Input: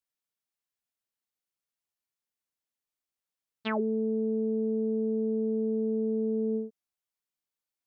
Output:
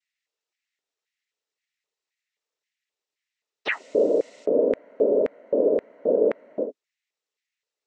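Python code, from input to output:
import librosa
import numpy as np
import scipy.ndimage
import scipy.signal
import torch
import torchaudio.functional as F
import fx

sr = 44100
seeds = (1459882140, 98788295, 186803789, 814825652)

y = fx.dmg_noise_colour(x, sr, seeds[0], colour='blue', level_db=-55.0, at=(3.7, 4.44), fade=0.02)
y = fx.noise_vocoder(y, sr, seeds[1], bands=12)
y = fx.filter_lfo_highpass(y, sr, shape='square', hz=1.9, low_hz=440.0, high_hz=2000.0, q=3.6)
y = y * librosa.db_to_amplitude(4.5)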